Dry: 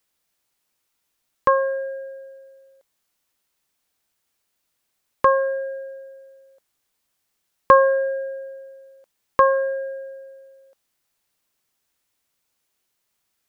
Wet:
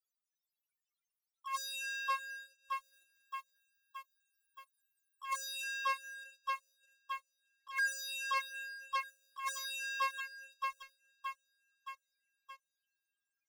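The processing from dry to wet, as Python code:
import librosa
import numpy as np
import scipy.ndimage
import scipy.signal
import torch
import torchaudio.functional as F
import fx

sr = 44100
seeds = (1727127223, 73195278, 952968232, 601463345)

y = fx.high_shelf(x, sr, hz=2400.0, db=11.0, at=(2.3, 5.62))
y = fx.spec_topn(y, sr, count=2)
y = fx.leveller(y, sr, passes=1)
y = scipy.signal.sosfilt(scipy.signal.butter(8, 1300.0, 'highpass', fs=sr, output='sos'), y)
y = fx.echo_feedback(y, sr, ms=621, feedback_pct=53, wet_db=-17.5)
y = fx.dereverb_blind(y, sr, rt60_s=0.55)
y = fx.over_compress(y, sr, threshold_db=-45.0, ratio=-1.0)
y = fx.leveller(y, sr, passes=2)
y = F.gain(torch.from_numpy(y), 3.5).numpy()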